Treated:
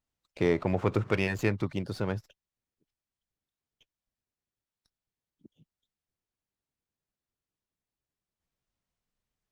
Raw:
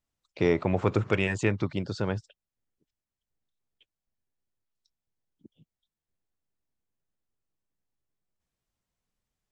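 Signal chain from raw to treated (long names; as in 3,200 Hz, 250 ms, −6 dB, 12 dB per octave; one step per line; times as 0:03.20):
windowed peak hold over 3 samples
level −2 dB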